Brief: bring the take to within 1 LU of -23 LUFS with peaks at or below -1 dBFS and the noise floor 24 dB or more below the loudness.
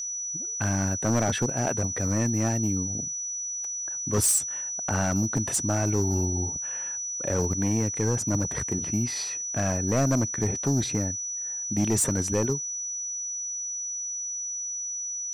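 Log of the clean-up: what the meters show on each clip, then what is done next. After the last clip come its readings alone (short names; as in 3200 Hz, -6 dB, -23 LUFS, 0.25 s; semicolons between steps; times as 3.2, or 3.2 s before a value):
clipped 1.2%; flat tops at -18.0 dBFS; steady tone 5900 Hz; tone level -30 dBFS; loudness -26.5 LUFS; peak -18.0 dBFS; loudness target -23.0 LUFS
-> clip repair -18 dBFS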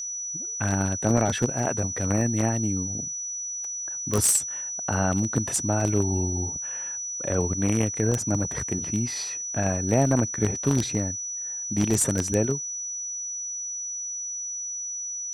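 clipped 0.0%; steady tone 5900 Hz; tone level -30 dBFS
-> notch 5900 Hz, Q 30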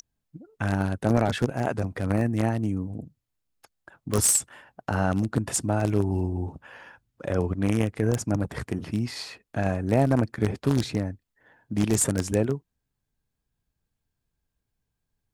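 steady tone none; loudness -26.0 LUFS; peak -8.0 dBFS; loudness target -23.0 LUFS
-> gain +3 dB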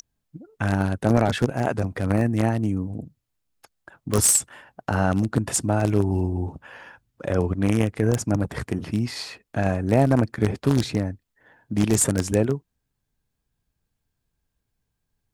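loudness -23.0 LUFS; peak -5.0 dBFS; noise floor -79 dBFS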